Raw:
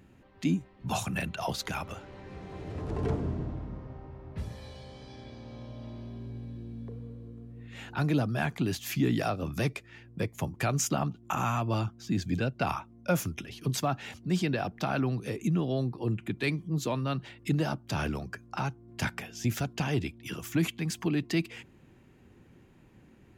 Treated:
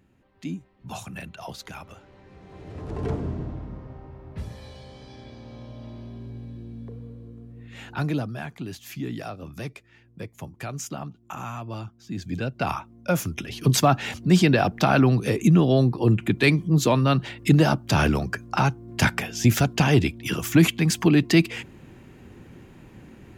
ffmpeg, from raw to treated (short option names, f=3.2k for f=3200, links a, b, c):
-af "volume=18.5dB,afade=t=in:st=2.38:d=0.76:silence=0.421697,afade=t=out:st=8:d=0.43:silence=0.421697,afade=t=in:st=12.06:d=0.64:silence=0.354813,afade=t=in:st=13.26:d=0.44:silence=0.446684"